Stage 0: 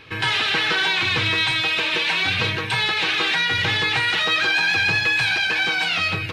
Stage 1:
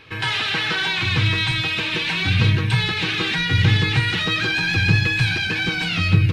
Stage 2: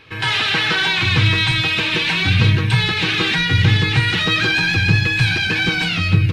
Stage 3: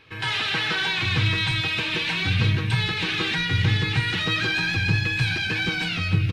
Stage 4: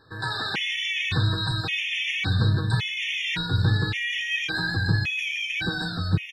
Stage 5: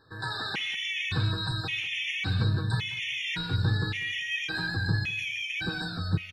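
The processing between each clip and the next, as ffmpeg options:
-af "asubboost=boost=9.5:cutoff=230,volume=0.841"
-af "dynaudnorm=f=150:g=3:m=1.68"
-af "aecho=1:1:304:0.178,volume=0.447"
-af "afftfilt=real='re*gt(sin(2*PI*0.89*pts/sr)*(1-2*mod(floor(b*sr/1024/1800),2)),0)':imag='im*gt(sin(2*PI*0.89*pts/sr)*(1-2*mod(floor(b*sr/1024/1800),2)),0)':win_size=1024:overlap=0.75"
-af "aecho=1:1:193|386:0.1|0.017,volume=0.596"

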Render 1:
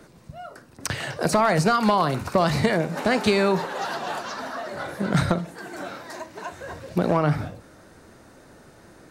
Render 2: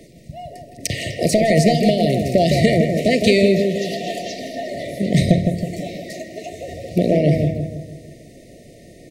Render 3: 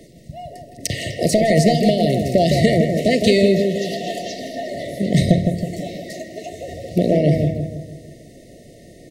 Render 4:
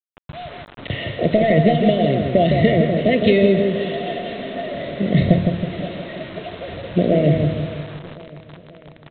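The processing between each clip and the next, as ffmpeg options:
-filter_complex "[0:a]afftfilt=real='re*(1-between(b*sr/4096,730,1800))':imag='im*(1-between(b*sr/4096,730,1800))':win_size=4096:overlap=0.75,asplit=2[s0][s1];[s1]adelay=161,lowpass=f=1600:p=1,volume=0.596,asplit=2[s2][s3];[s3]adelay=161,lowpass=f=1600:p=1,volume=0.5,asplit=2[s4][s5];[s5]adelay=161,lowpass=f=1600:p=1,volume=0.5,asplit=2[s6][s7];[s7]adelay=161,lowpass=f=1600:p=1,volume=0.5,asplit=2[s8][s9];[s9]adelay=161,lowpass=f=1600:p=1,volume=0.5,asplit=2[s10][s11];[s11]adelay=161,lowpass=f=1600:p=1,volume=0.5[s12];[s2][s4][s6][s8][s10][s12]amix=inputs=6:normalize=0[s13];[s0][s13]amix=inputs=2:normalize=0,volume=1.88"
-af "bandreject=f=2400:w=7.4"
-af "aresample=8000,acrusher=bits=5:mix=0:aa=0.000001,aresample=44100,aecho=1:1:531|1062|1593|2124|2655:0.119|0.0666|0.0373|0.0209|0.0117"

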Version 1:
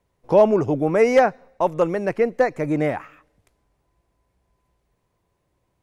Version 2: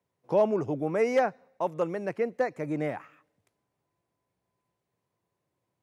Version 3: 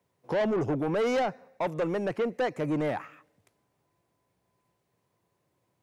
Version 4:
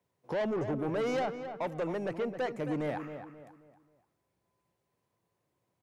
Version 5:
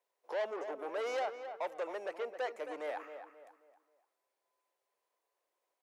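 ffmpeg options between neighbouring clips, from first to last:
-af "highpass=f=99:w=0.5412,highpass=f=99:w=1.3066,volume=0.355"
-filter_complex "[0:a]asplit=2[s0][s1];[s1]alimiter=limit=0.0841:level=0:latency=1:release=31,volume=1.26[s2];[s0][s2]amix=inputs=2:normalize=0,asoftclip=type=tanh:threshold=0.0794,volume=0.891"
-filter_complex "[0:a]asplit=2[s0][s1];[s1]adelay=267,lowpass=f=2400:p=1,volume=0.355,asplit=2[s2][s3];[s3]adelay=267,lowpass=f=2400:p=1,volume=0.37,asplit=2[s4][s5];[s5]adelay=267,lowpass=f=2400:p=1,volume=0.37,asplit=2[s6][s7];[s7]adelay=267,lowpass=f=2400:p=1,volume=0.37[s8];[s0][s2][s4][s6][s8]amix=inputs=5:normalize=0,volume=0.562"
-af "highpass=f=460:w=0.5412,highpass=f=460:w=1.3066,volume=0.75"

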